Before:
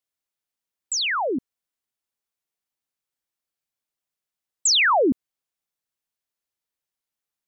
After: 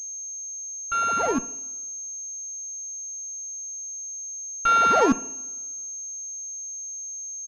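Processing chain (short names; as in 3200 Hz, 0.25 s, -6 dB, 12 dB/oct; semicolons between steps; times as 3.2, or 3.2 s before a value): sample sorter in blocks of 32 samples; comb 4.4 ms, depth 44%; in parallel at -8 dB: Schmitt trigger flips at -21.5 dBFS; on the sum: high shelf 2300 Hz -11.5 dB; reverb, pre-delay 3 ms, DRR 13 dB; pulse-width modulation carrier 6400 Hz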